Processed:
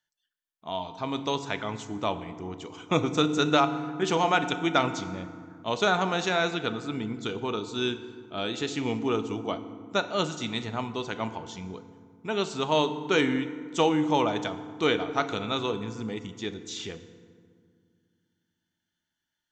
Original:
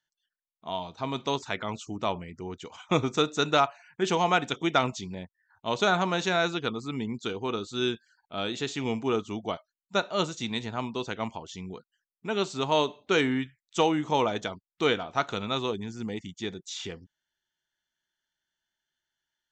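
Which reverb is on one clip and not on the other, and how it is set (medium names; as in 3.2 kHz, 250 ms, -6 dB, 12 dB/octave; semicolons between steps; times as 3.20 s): FDN reverb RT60 2 s, low-frequency decay 1.5×, high-frequency decay 0.55×, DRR 10 dB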